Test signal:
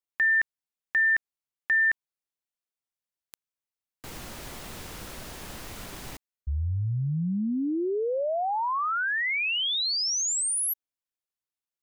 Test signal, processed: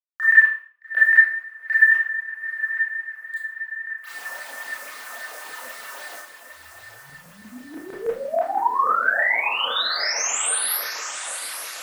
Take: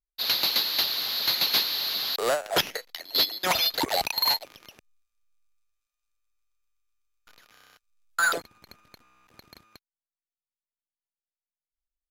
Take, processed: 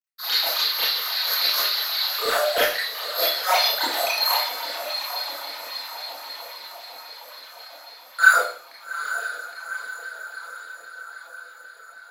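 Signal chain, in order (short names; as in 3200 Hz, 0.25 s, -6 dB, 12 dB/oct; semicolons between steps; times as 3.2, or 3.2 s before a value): companded quantiser 8-bit; diffused feedback echo 0.84 s, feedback 61%, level -9 dB; phaser stages 8, 3.7 Hz, lowest notch 100–1000 Hz; LFO high-pass saw down 6.2 Hz 480–1700 Hz; Schroeder reverb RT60 0.45 s, combs from 25 ms, DRR -7.5 dB; gain -3 dB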